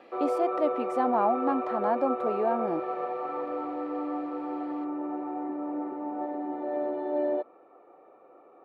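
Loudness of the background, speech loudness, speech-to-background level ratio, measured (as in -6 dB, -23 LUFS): -32.0 LUFS, -29.5 LUFS, 2.5 dB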